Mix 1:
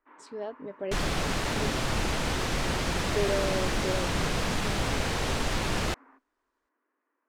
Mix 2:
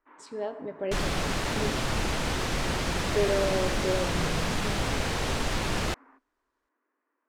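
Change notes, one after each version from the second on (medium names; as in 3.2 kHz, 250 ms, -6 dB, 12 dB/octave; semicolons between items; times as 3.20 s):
reverb: on, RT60 1.5 s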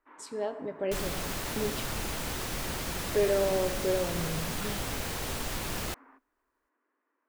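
second sound -7.0 dB; master: remove distance through air 65 m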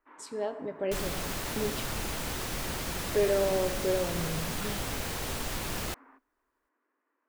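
no change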